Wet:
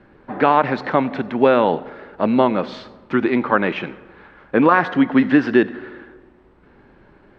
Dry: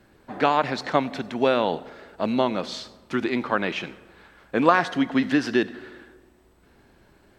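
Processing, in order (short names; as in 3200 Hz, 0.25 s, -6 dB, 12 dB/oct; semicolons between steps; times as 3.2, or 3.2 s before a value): LPF 2100 Hz 12 dB/oct; bell 73 Hz -6 dB 0.79 oct; notch 680 Hz, Q 12; maximiser +8.5 dB; gain -1 dB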